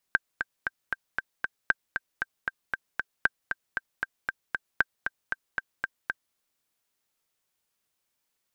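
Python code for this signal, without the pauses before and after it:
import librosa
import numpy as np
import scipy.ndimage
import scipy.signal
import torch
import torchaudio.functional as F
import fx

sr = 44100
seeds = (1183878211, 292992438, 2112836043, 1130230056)

y = fx.click_track(sr, bpm=232, beats=6, bars=4, hz=1570.0, accent_db=7.0, level_db=-7.5)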